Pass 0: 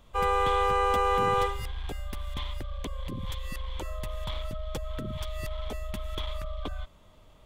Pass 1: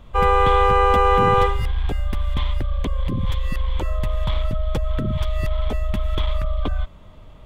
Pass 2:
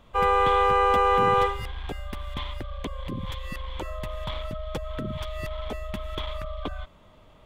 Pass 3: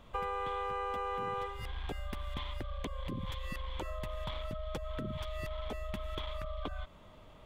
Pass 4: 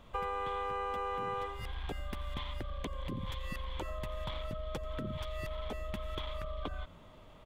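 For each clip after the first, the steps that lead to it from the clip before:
tone controls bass +5 dB, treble -9 dB; gain +8.5 dB
low shelf 150 Hz -11 dB; gain -3.5 dB
compressor 5:1, threshold -34 dBFS, peak gain reduction 15 dB; gain -1.5 dB
frequency-shifting echo 87 ms, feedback 56%, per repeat -100 Hz, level -21 dB

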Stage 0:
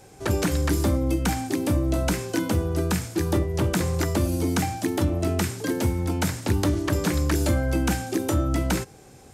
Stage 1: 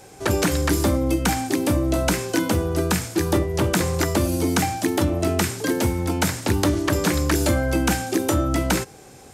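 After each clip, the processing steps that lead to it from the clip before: low shelf 230 Hz -6 dB; gain +5.5 dB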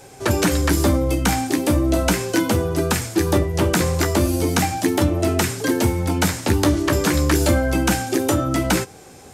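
flange 0.36 Hz, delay 7 ms, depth 8.2 ms, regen -38%; gain +6 dB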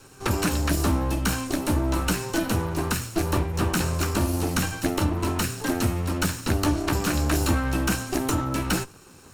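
minimum comb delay 0.73 ms; gain -4.5 dB

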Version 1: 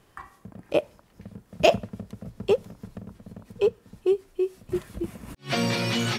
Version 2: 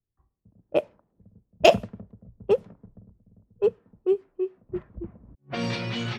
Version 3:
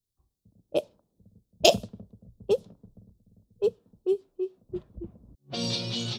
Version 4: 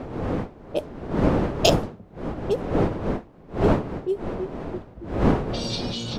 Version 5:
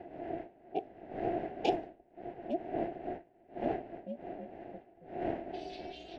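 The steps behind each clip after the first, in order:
low-pass opened by the level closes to 380 Hz, open at -17.5 dBFS; three-band expander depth 70%; gain -3.5 dB
EQ curve 550 Hz 0 dB, 2000 Hz -12 dB, 3700 Hz +11 dB; gain -3 dB
wind noise 440 Hz -26 dBFS
vowel filter e; ring modulator 170 Hz

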